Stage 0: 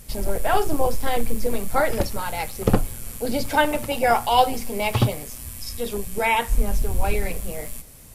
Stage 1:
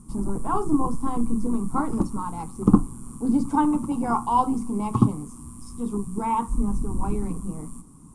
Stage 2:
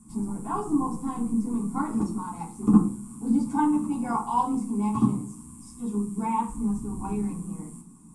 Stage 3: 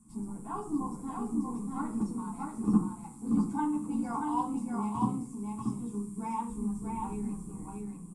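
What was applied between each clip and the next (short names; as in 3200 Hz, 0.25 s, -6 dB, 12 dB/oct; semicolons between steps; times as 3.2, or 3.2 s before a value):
EQ curve 110 Hz 0 dB, 150 Hz +12 dB, 300 Hz +13 dB, 590 Hz -14 dB, 1100 Hz +12 dB, 1700 Hz -18 dB, 4500 Hz -17 dB, 9200 Hz +2 dB, 13000 Hz -27 dB; gain -5.5 dB
reverb RT60 0.45 s, pre-delay 3 ms, DRR -4 dB; gain -5.5 dB
echo 0.636 s -3.5 dB; gain -8 dB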